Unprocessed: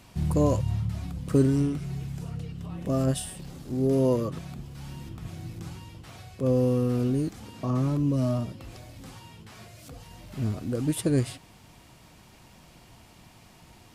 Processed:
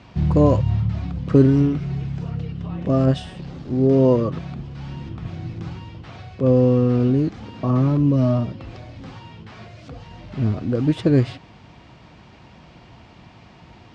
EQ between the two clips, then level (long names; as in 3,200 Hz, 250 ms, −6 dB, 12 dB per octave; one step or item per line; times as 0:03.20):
high-pass filter 48 Hz
low-pass filter 7,200 Hz 12 dB per octave
high-frequency loss of the air 170 metres
+8.0 dB